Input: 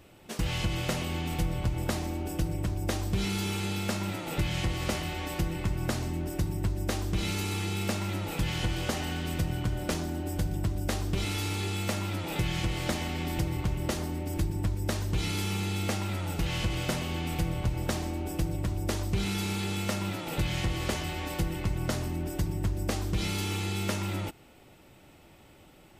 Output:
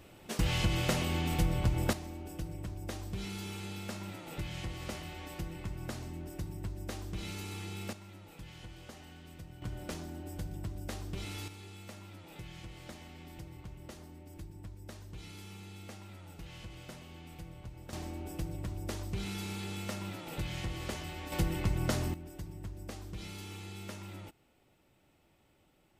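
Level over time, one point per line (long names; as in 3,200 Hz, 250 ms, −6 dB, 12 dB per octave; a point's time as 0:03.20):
0 dB
from 0:01.93 −10 dB
from 0:07.93 −19 dB
from 0:09.62 −10 dB
from 0:11.48 −17.5 dB
from 0:17.93 −8 dB
from 0:21.32 −1 dB
from 0:22.14 −13.5 dB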